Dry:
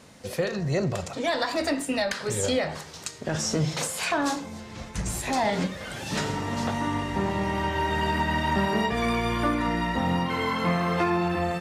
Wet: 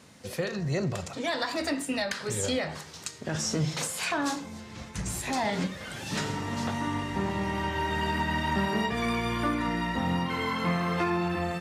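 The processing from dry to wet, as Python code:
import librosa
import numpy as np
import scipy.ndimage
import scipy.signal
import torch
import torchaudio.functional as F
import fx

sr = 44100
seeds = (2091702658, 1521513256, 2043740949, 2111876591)

y = scipy.signal.sosfilt(scipy.signal.butter(2, 61.0, 'highpass', fs=sr, output='sos'), x)
y = fx.peak_eq(y, sr, hz=600.0, db=-3.5, octaves=1.2)
y = y * 10.0 ** (-2.0 / 20.0)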